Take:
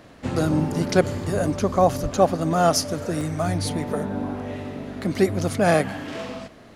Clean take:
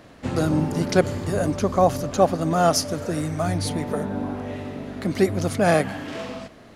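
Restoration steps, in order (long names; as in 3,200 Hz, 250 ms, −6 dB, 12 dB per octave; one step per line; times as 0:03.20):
0:02.02–0:02.14: high-pass filter 140 Hz 24 dB per octave
repair the gap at 0:03.21, 1.5 ms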